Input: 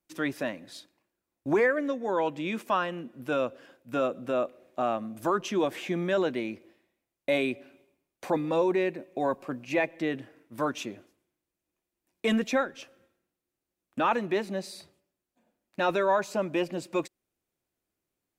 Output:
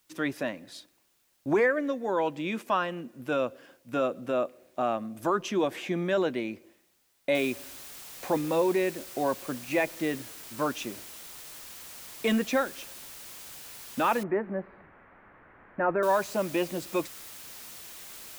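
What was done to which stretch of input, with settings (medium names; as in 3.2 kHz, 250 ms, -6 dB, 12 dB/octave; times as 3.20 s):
7.35 s: noise floor step -70 dB -45 dB
14.23–16.03 s: steep low-pass 1.9 kHz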